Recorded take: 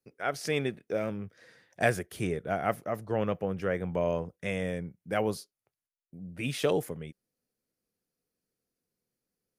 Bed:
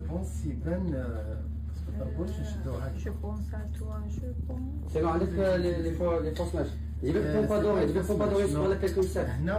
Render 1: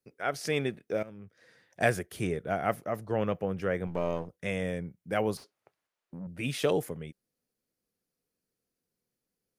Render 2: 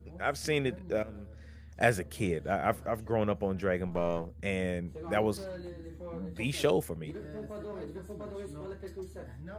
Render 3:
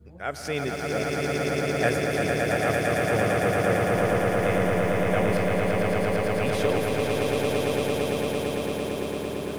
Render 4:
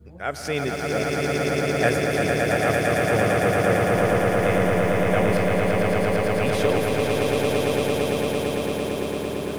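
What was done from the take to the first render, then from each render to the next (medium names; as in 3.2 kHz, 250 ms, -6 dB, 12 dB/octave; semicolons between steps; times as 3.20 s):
1.03–1.80 s: fade in, from -16 dB; 3.87–4.29 s: partial rectifier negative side -7 dB; 5.37–6.27 s: overdrive pedal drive 26 dB, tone 1 kHz, clips at -32 dBFS
add bed -15 dB
echo with a slow build-up 113 ms, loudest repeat 8, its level -3.5 dB; bit-crushed delay 173 ms, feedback 80%, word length 7-bit, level -13 dB
trim +3 dB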